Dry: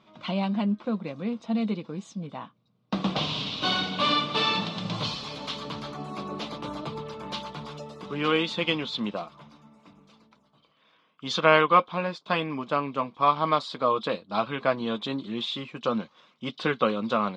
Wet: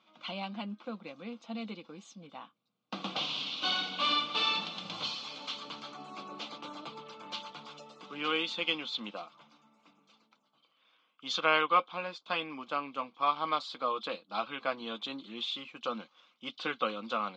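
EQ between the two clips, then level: cabinet simulation 410–7100 Hz, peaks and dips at 410 Hz -10 dB, 620 Hz -8 dB, 990 Hz -7 dB, 1.8 kHz -9 dB, 5.2 kHz -4 dB; band-stop 3.8 kHz, Q 23; -2.0 dB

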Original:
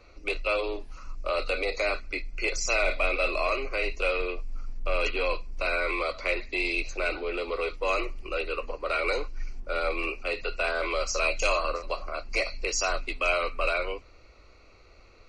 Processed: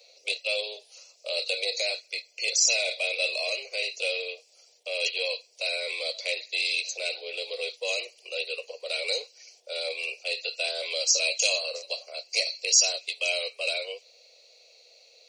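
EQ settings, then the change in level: Chebyshev high-pass 470 Hz, order 5; dynamic bell 670 Hz, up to -4 dB, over -44 dBFS, Q 1.3; FFT filter 670 Hz 0 dB, 1.2 kHz -24 dB, 3.5 kHz +11 dB; 0.0 dB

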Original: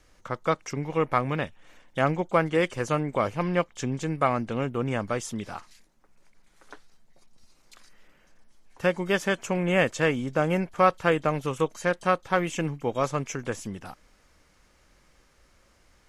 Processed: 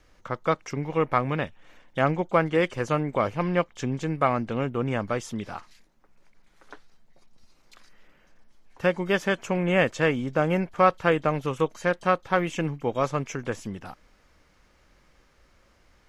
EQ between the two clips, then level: peaking EQ 9.3 kHz -8 dB 1.2 oct; +1.0 dB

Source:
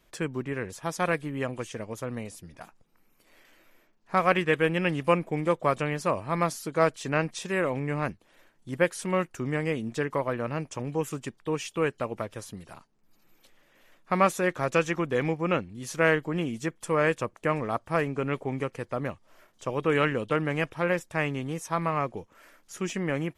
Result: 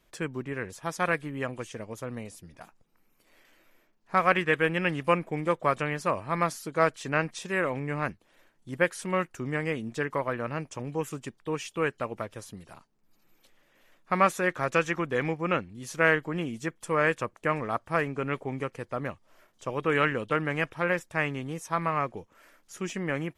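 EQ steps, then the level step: dynamic bell 1.6 kHz, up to +5 dB, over -38 dBFS, Q 1; -2.5 dB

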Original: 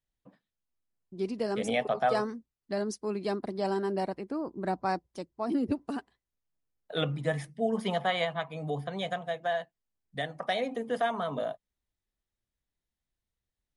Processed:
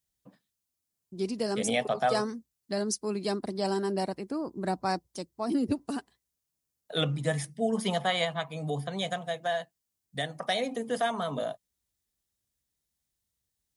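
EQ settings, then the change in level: high-pass 56 Hz; tone controls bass +3 dB, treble +12 dB; 0.0 dB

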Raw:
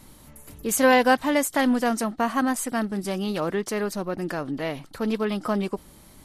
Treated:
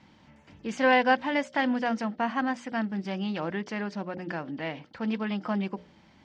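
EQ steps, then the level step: distance through air 68 m; cabinet simulation 120–4900 Hz, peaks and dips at 130 Hz -7 dB, 270 Hz -5 dB, 420 Hz -10 dB, 620 Hz -5 dB, 1.2 kHz -8 dB, 4 kHz -8 dB; hum notches 60/120/180/240/300/360/420/480/540/600 Hz; 0.0 dB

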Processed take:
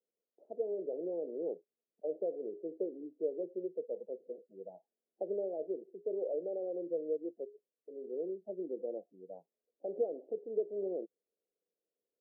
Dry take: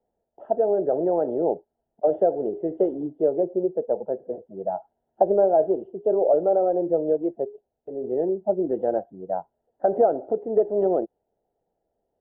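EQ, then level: Chebyshev band-pass 170–500 Hz, order 3; differentiator; +11.5 dB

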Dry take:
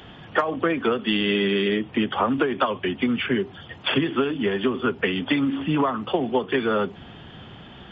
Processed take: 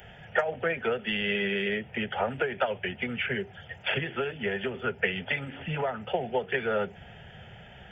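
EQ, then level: treble shelf 3.9 kHz +7 dB; static phaser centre 1.1 kHz, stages 6; -2.0 dB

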